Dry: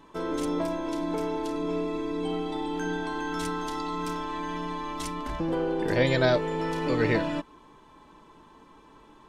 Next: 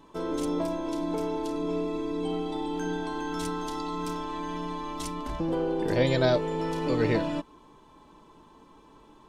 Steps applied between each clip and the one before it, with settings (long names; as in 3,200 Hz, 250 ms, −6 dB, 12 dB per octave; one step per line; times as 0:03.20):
parametric band 1,800 Hz −5.5 dB 1.1 octaves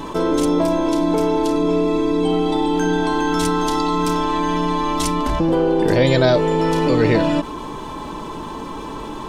envelope flattener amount 50%
level +7.5 dB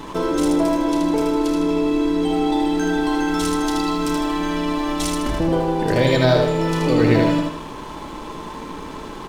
dead-zone distortion −37.5 dBFS
repeating echo 78 ms, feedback 43%, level −3.5 dB
level −1.5 dB